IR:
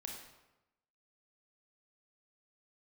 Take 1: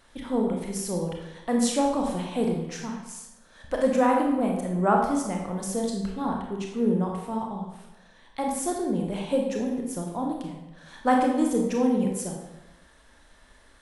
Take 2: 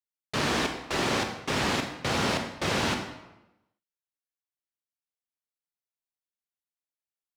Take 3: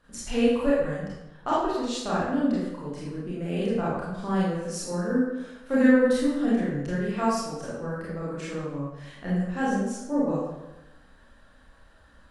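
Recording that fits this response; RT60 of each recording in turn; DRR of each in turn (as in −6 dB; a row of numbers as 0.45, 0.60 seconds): 1; 1.0, 1.0, 1.0 seconds; 0.0, 4.5, −8.5 decibels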